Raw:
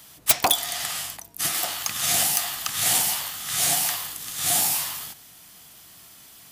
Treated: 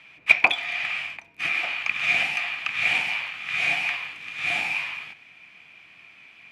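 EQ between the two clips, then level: high-pass 140 Hz 6 dB/octave; resonant low-pass 2.4 kHz, resonance Q 15; -4.5 dB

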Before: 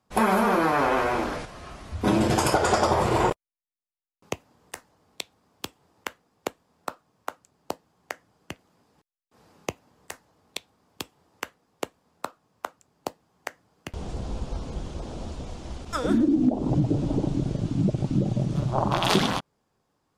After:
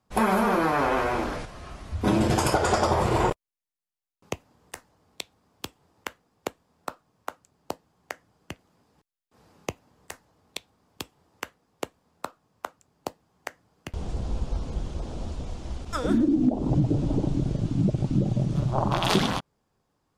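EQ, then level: bass shelf 100 Hz +6.5 dB; -1.5 dB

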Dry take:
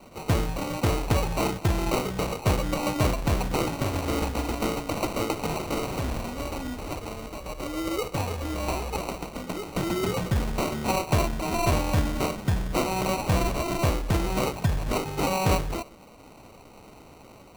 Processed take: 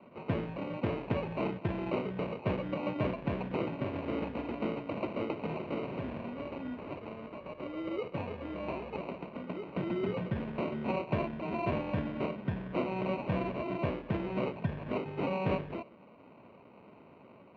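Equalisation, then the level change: dynamic bell 1.2 kHz, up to -4 dB, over -40 dBFS, Q 1.3; cabinet simulation 180–2300 Hz, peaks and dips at 310 Hz -5 dB, 470 Hz -4 dB, 780 Hz -9 dB, 1.3 kHz -8 dB, 2 kHz -6 dB; -1.5 dB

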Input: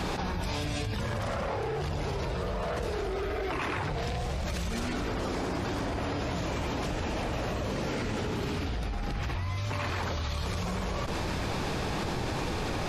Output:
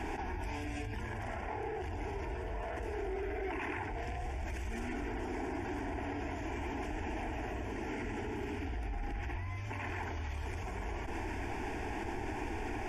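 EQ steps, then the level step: treble shelf 8 kHz -11.5 dB; static phaser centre 810 Hz, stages 8; -3.5 dB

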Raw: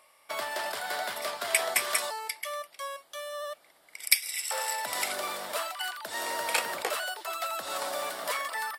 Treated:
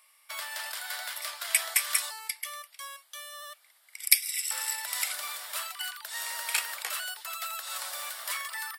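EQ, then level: high-pass 1.4 kHz 12 dB/octave; treble shelf 8.7 kHz +7 dB; -1.0 dB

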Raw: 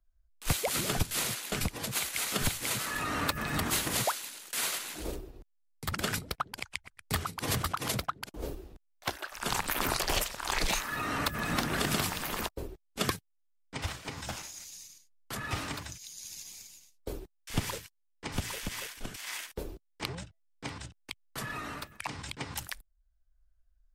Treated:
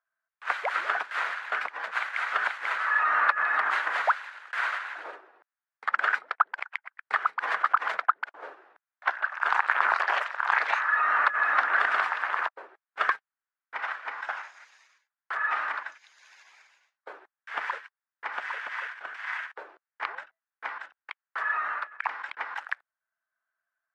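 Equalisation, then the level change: ladder high-pass 610 Hz, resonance 20%; resonant low-pass 1.6 kHz, resonance Q 2.9; +9.0 dB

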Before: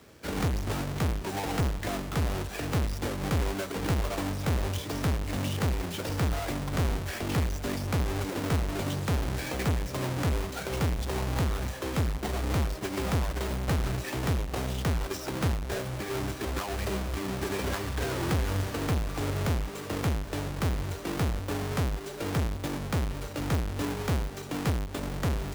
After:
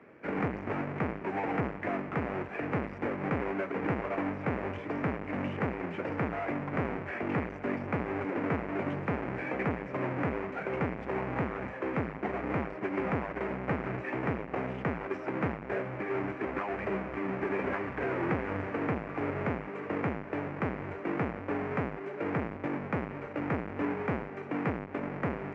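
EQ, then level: high-pass 200 Hz 12 dB/octave; tape spacing loss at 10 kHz 33 dB; resonant high shelf 2.9 kHz -8.5 dB, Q 3; +2.5 dB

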